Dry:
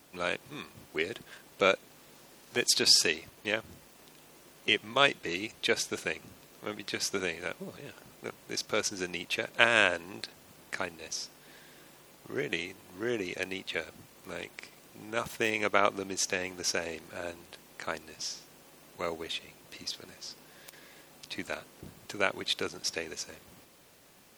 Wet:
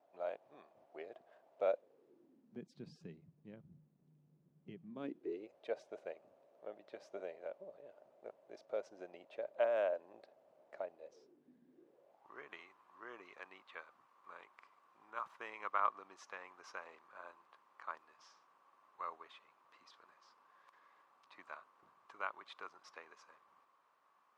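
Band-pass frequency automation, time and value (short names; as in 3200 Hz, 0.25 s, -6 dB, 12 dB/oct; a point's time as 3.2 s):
band-pass, Q 6
1.69 s 660 Hz
2.72 s 160 Hz
4.77 s 160 Hz
5.58 s 610 Hz
11 s 610 Hz
11.59 s 220 Hz
12.35 s 1100 Hz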